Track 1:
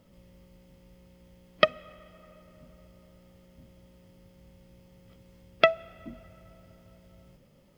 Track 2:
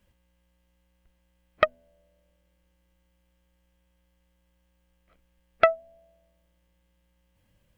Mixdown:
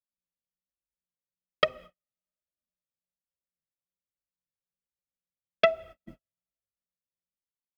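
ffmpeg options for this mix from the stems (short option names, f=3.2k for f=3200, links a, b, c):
-filter_complex "[0:a]flanger=delay=1.7:depth=6.5:regen=2:speed=1.2:shape=triangular,volume=0dB[a];[1:a]volume=-13dB[b];[a][b]amix=inputs=2:normalize=0,bandreject=f=129.3:t=h:w=4,bandreject=f=258.6:t=h:w=4,bandreject=f=387.9:t=h:w=4,bandreject=f=517.2:t=h:w=4,bandreject=f=646.5:t=h:w=4,bandreject=f=775.8:t=h:w=4,bandreject=f=905.1:t=h:w=4,bandreject=f=1.0344k:t=h:w=4,bandreject=f=1.1637k:t=h:w=4,agate=range=-48dB:threshold=-46dB:ratio=16:detection=peak"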